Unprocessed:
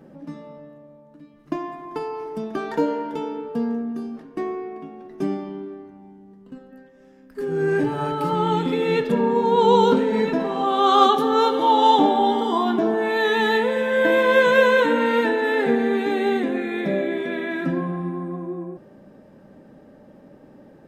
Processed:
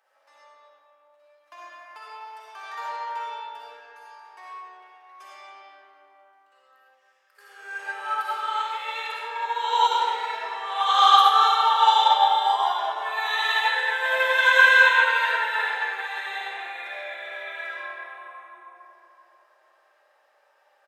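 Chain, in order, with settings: Bessel high-pass 1.2 kHz, order 6; speakerphone echo 100 ms, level -25 dB; reverberation RT60 3.0 s, pre-delay 20 ms, DRR -7.5 dB; upward expansion 1.5:1, over -26 dBFS

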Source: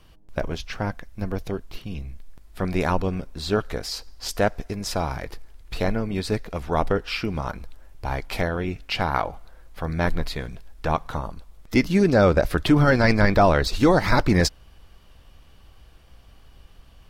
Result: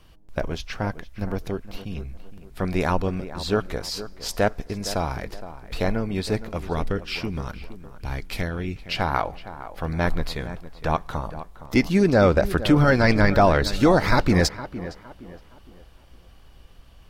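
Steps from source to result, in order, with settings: 6.73–8.96 s: peaking EQ 770 Hz -9.5 dB 1.8 oct; tape echo 463 ms, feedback 39%, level -12 dB, low-pass 1.7 kHz

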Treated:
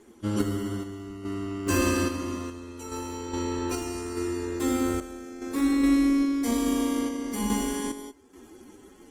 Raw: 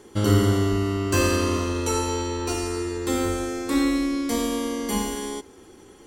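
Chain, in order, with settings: ten-band graphic EQ 125 Hz -6 dB, 250 Hz +6 dB, 500 Hz -4 dB, 4 kHz -4 dB; time stretch by phase-locked vocoder 1.5×; random-step tremolo 2.4 Hz, depth 85%; Opus 16 kbps 48 kHz

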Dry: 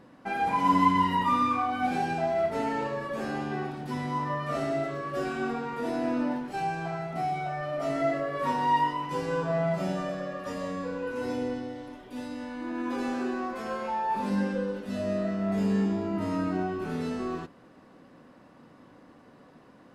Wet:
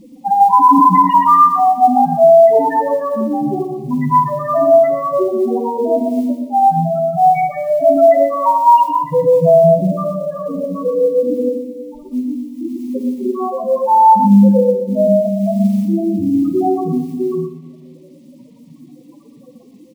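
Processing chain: tracing distortion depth 0.11 ms; 2.18–2.74 s: frequency weighting D; reverb removal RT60 1.7 s; 4.40–4.92 s: bass shelf 70 Hz -8 dB; loudest bins only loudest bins 2; companded quantiser 8-bit; Butterworth band-stop 1.5 kHz, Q 1.8; delay 119 ms -8 dB; simulated room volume 1000 m³, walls mixed, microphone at 0.73 m; loudness maximiser +22 dB; trim -1 dB

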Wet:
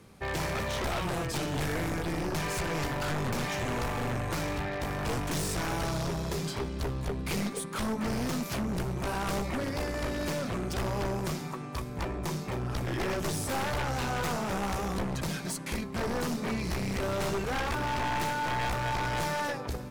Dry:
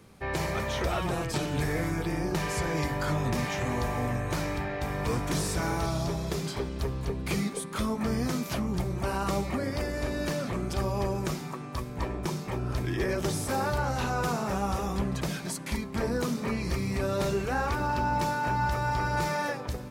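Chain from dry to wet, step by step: Chebyshev shaper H 2 -8 dB, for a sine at -18 dBFS; wavefolder -26 dBFS

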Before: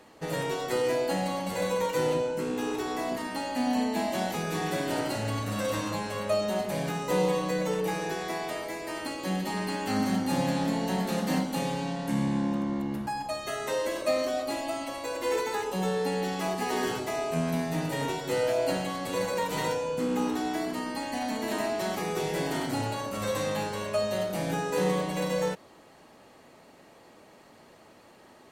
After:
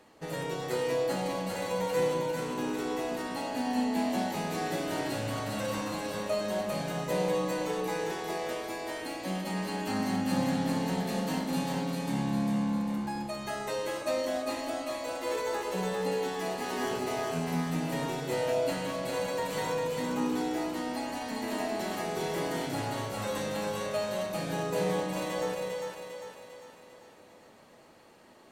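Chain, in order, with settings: two-band feedback delay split 510 Hz, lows 196 ms, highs 400 ms, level -3.5 dB; trim -4.5 dB

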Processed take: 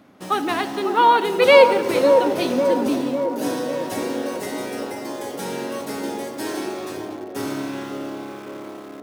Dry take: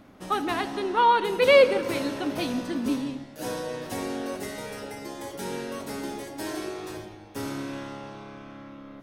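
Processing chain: in parallel at -5 dB: bit crusher 7-bit; on the sum: high-pass 130 Hz 12 dB/octave; feedback echo behind a band-pass 550 ms, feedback 58%, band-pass 520 Hz, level -4 dB; trim +1 dB

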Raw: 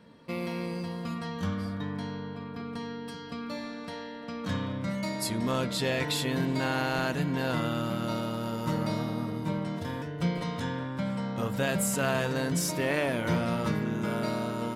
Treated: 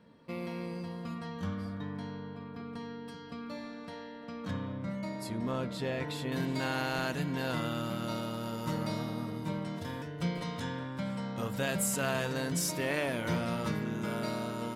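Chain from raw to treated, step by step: treble shelf 2.5 kHz -4 dB, from 4.51 s -10 dB, from 6.32 s +3.5 dB; trim -4.5 dB

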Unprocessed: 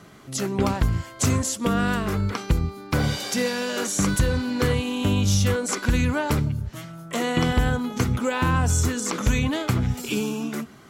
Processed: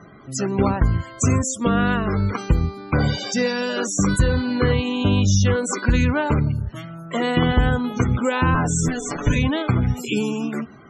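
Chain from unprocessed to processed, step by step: 8.54–9.36 s: comb filter that takes the minimum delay 6.9 ms; loudest bins only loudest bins 64; trim +3.5 dB

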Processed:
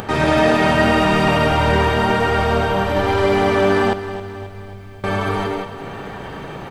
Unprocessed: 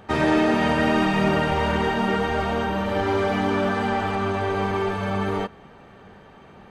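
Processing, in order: multi-tap echo 104/183 ms -5.5/-4 dB; on a send at -11.5 dB: reverberation RT60 0.30 s, pre-delay 5 ms; on the sum: upward compressor, threshold -24 dBFS; treble shelf 6 kHz +4.5 dB; band-stop 6.5 kHz, Q 23; 3.93–5.04 s: amplifier tone stack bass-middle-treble 10-0-1; bit-crushed delay 267 ms, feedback 55%, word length 9-bit, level -13 dB; trim +3.5 dB

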